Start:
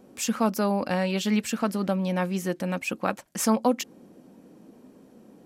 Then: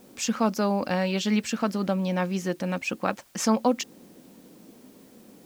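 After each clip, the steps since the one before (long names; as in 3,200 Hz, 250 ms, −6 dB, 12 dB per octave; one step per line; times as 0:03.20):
high shelf with overshoot 7,800 Hz −7.5 dB, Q 1.5
bit-depth reduction 10 bits, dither triangular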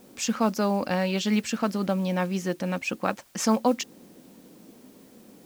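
noise that follows the level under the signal 30 dB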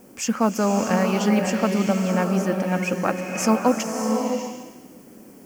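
parametric band 3,800 Hz −14 dB 0.41 octaves
slow-attack reverb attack 610 ms, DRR 2.5 dB
level +3.5 dB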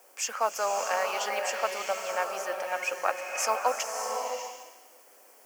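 high-pass filter 590 Hz 24 dB per octave
level −2.5 dB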